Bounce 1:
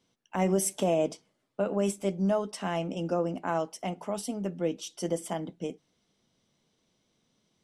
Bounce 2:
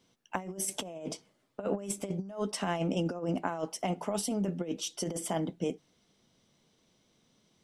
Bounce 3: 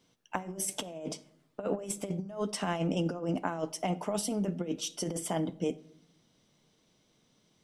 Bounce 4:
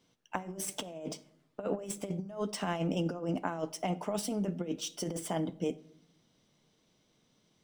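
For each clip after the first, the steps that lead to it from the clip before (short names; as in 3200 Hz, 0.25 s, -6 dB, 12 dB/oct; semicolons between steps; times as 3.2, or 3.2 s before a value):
negative-ratio compressor -32 dBFS, ratio -0.5
reverb RT60 0.75 s, pre-delay 7 ms, DRR 15 dB
median filter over 3 samples; gain -1.5 dB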